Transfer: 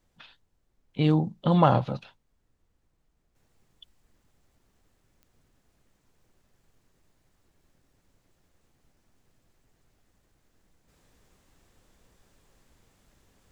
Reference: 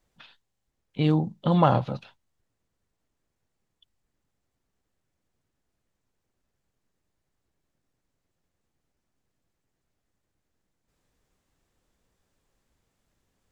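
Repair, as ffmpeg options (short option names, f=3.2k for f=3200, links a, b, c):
-af "adeclick=t=4,agate=range=-21dB:threshold=-63dB,asetnsamples=n=441:p=0,asendcmd='3.35 volume volume -10.5dB',volume=0dB"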